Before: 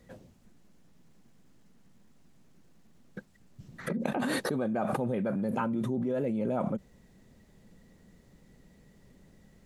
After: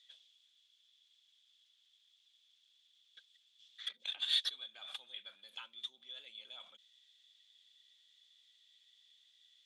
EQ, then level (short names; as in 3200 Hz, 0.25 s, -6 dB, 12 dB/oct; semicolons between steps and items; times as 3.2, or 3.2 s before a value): ladder band-pass 3500 Hz, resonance 90%; +10.0 dB